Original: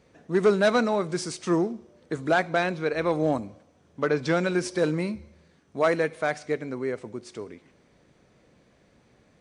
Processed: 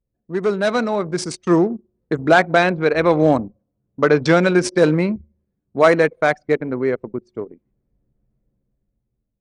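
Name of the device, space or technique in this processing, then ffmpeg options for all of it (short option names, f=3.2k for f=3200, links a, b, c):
voice memo with heavy noise removal: -af "anlmdn=6.31,dynaudnorm=f=450:g=5:m=11dB"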